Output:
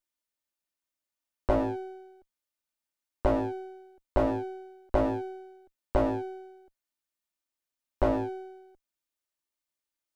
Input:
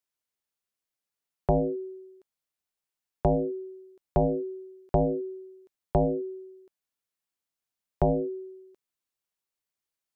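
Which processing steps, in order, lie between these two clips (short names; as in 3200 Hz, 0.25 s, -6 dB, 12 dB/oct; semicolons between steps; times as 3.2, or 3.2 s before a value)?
minimum comb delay 3.3 ms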